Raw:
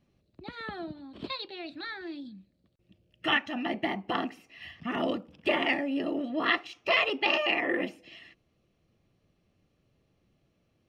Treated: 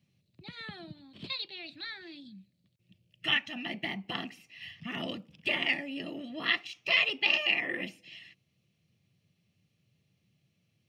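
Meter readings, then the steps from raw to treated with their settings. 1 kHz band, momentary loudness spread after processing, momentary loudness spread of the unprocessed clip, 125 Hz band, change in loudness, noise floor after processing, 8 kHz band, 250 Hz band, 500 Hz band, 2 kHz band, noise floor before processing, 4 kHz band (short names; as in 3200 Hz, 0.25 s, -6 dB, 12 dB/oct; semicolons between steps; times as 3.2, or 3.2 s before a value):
-10.0 dB, 22 LU, 18 LU, 0.0 dB, -1.0 dB, -76 dBFS, n/a, -8.0 dB, -10.0 dB, -0.5 dB, -73 dBFS, +2.0 dB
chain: HPF 100 Hz 24 dB/oct; band shelf 620 Hz -12 dB 3 oct; gain +2 dB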